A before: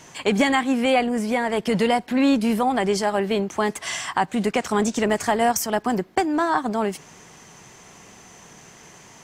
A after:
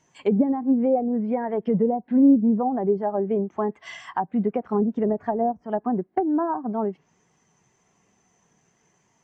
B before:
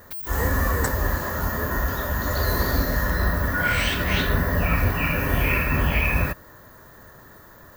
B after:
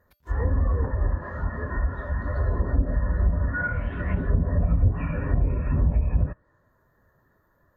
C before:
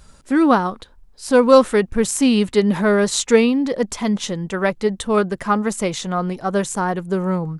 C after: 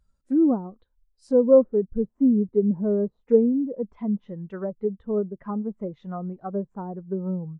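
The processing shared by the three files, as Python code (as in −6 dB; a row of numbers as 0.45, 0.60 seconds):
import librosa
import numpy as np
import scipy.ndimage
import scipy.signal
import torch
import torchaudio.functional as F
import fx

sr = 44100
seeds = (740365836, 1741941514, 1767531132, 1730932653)

y = fx.env_lowpass_down(x, sr, base_hz=620.0, full_db=-16.0)
y = fx.spectral_expand(y, sr, expansion=1.5)
y = y * 10.0 ** (-24 / 20.0) / np.sqrt(np.mean(np.square(y)))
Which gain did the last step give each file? −1.0, 0.0, −2.5 decibels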